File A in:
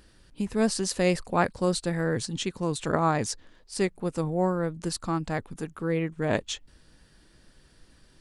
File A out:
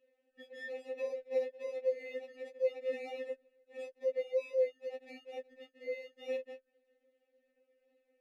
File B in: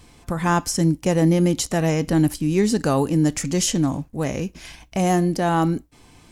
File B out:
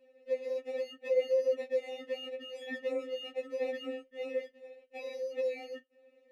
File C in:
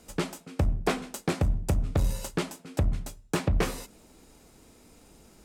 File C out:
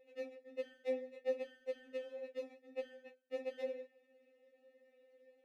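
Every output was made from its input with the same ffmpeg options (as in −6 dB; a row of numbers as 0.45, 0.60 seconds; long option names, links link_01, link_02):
-filter_complex "[0:a]acrossover=split=280|3000[link_01][link_02][link_03];[link_02]acompressor=threshold=-24dB:ratio=3[link_04];[link_01][link_04][link_03]amix=inputs=3:normalize=0,acrusher=samples=28:mix=1:aa=0.000001,asplit=3[link_05][link_06][link_07];[link_05]bandpass=frequency=530:width_type=q:width=8,volume=0dB[link_08];[link_06]bandpass=frequency=1840:width_type=q:width=8,volume=-6dB[link_09];[link_07]bandpass=frequency=2480:width_type=q:width=8,volume=-9dB[link_10];[link_08][link_09][link_10]amix=inputs=3:normalize=0,afftfilt=real='re*3.46*eq(mod(b,12),0)':imag='im*3.46*eq(mod(b,12),0)':win_size=2048:overlap=0.75"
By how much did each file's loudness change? −10.0, −14.5, −14.0 LU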